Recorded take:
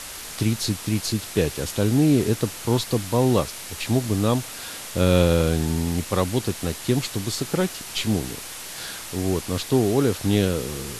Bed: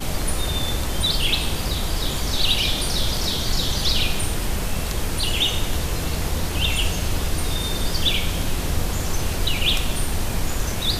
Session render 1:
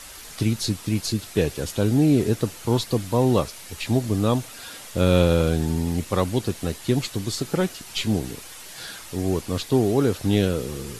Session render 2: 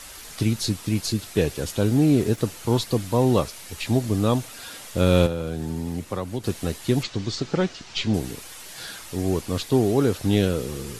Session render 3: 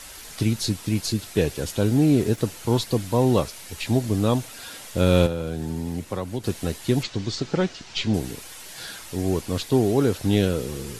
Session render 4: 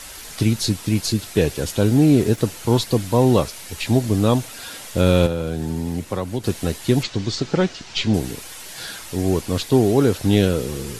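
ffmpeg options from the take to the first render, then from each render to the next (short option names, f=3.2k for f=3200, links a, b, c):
-af "afftdn=nr=7:nf=-37"
-filter_complex "[0:a]asettb=1/sr,asplit=3[a][b][c];[a]atrim=end=1.874[d];[b]atrim=start=1.87:end=2.38,asetpts=PTS-STARTPTS,afade=t=in:d=0.004:c=qsin,afade=t=out:st=0.506:d=0.004:c=qsin,aeval=exprs='sgn(val(0))*max(abs(val(0))-0.00562,0)':c=same[e];[c]atrim=start=2.376[f];[d][e]acrossfade=d=0.004:c1=hsin:c2=qsin[g];[g][f]acrossfade=d=0.004:c1=qsin:c2=hsin,asettb=1/sr,asplit=3[h][i][j];[h]atrim=end=5.264[k];[i]atrim=start=5.26:end=6.44,asetpts=PTS-STARTPTS,afade=t=in:d=0.004:c=qsin,afade=t=out:st=1.176:d=0.004:c=qsin,acrossover=split=99|1900[l][m][n];[l]acompressor=threshold=-41dB:ratio=4[o];[m]acompressor=threshold=-26dB:ratio=4[p];[n]acompressor=threshold=-47dB:ratio=4[q];[o][p][q]amix=inputs=3:normalize=0[r];[j]atrim=start=6.436[s];[k][r]acrossfade=d=0.004:c1=hsin:c2=qsin[t];[t][s]acrossfade=d=0.004:c1=qsin:c2=hsin,asettb=1/sr,asplit=3[u][v][w];[u]atrim=end=7.034[x];[v]atrim=start=7.03:end=8.14,asetpts=PTS-STARTPTS,afade=t=in:d=0.004:c=qsin,afade=t=out:st=1.106:d=0.004:c=qsin,lowpass=f=6.2k:w=0.5412,lowpass=f=6.2k:w=1.3066[y];[w]atrim=start=8.136[z];[x][y]acrossfade=d=0.004:c1=hsin:c2=qsin[aa];[aa][z]acrossfade=d=0.004:c1=qsin:c2=hsin"
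-af "bandreject=f=1.2k:w=19"
-af "volume=4dB,alimiter=limit=-3dB:level=0:latency=1"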